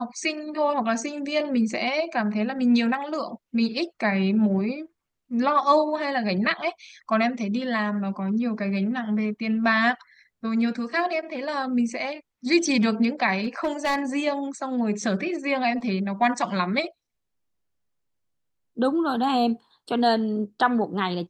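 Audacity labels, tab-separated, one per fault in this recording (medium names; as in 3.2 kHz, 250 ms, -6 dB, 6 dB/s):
13.440000	14.010000	clipped -20.5 dBFS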